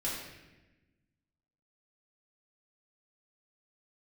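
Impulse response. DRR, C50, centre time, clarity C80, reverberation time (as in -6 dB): -7.5 dB, 1.0 dB, 65 ms, 3.5 dB, 1.1 s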